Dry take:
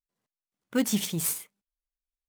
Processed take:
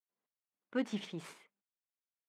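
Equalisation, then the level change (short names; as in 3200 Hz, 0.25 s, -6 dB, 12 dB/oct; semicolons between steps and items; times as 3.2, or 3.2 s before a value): HPF 250 Hz 12 dB/oct; LPF 2500 Hz 12 dB/oct; -6.5 dB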